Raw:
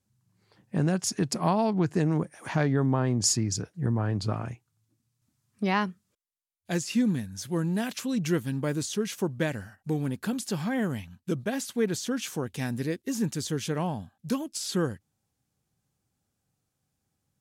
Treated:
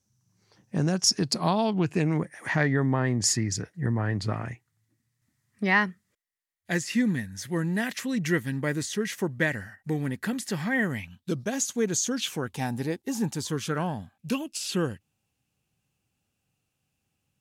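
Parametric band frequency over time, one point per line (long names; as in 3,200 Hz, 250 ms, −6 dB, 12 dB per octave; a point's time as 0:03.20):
parametric band +14.5 dB 0.32 octaves
0:01.00 5,900 Hz
0:02.24 1,900 Hz
0:10.94 1,900 Hz
0:11.52 6,600 Hz
0:12.10 6,600 Hz
0:12.58 820 Hz
0:13.32 820 Hz
0:14.28 2,700 Hz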